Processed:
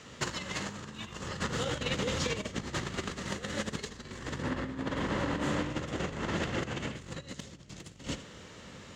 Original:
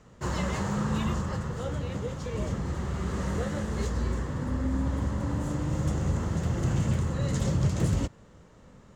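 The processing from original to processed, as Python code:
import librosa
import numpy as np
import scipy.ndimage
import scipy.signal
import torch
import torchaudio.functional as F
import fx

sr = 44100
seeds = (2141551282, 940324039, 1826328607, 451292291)

y = fx.octave_divider(x, sr, octaves=1, level_db=-1.0)
y = fx.bass_treble(y, sr, bass_db=-6, treble_db=-12, at=(4.41, 6.95), fade=0.02)
y = fx.echo_feedback(y, sr, ms=80, feedback_pct=17, wet_db=-9.5)
y = fx.over_compress(y, sr, threshold_db=-32.0, ratio=-0.5)
y = fx.weighting(y, sr, curve='D')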